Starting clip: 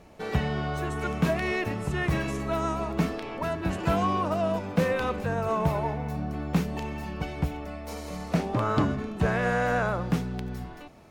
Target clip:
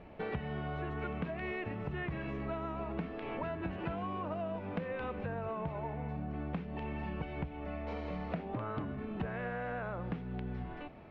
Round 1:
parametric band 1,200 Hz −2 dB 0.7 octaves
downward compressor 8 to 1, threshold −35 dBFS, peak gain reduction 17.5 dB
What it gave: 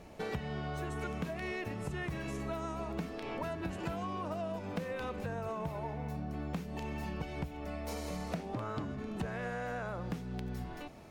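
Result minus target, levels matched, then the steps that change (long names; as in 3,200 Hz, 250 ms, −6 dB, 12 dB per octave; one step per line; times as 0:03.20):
4,000 Hz band +5.0 dB
add first: low-pass filter 3,000 Hz 24 dB per octave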